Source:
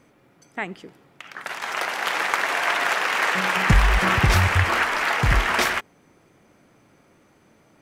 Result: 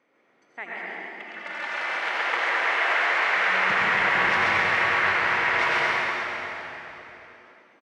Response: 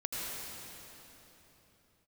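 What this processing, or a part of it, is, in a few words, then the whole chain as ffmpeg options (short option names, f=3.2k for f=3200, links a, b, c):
station announcement: -filter_complex "[0:a]asettb=1/sr,asplit=3[a][b][c];[a]atrim=end=0.744[d];[b]atrim=start=0.74:end=1.77,asetpts=PTS-STARTPTS,afade=t=in:d=0.004:c=qsin,afade=t=out:st=1.026:d=0.004:c=qsin,aecho=1:1:3.4:0.89,atrim=end_sample=45423[e];[c]atrim=start=1.766[f];[d][e]acrossfade=d=0.004:c1=hsin:c2=qsin[g];[g][f]acrossfade=d=0.004:c1=qsin:c2=hsin,highpass=380,lowpass=3.8k,equalizer=f=2k:t=o:w=0.32:g=5,aecho=1:1:134.1|233.2:0.631|0.282[h];[1:a]atrim=start_sample=2205[i];[h][i]afir=irnorm=-1:irlink=0,volume=-7dB"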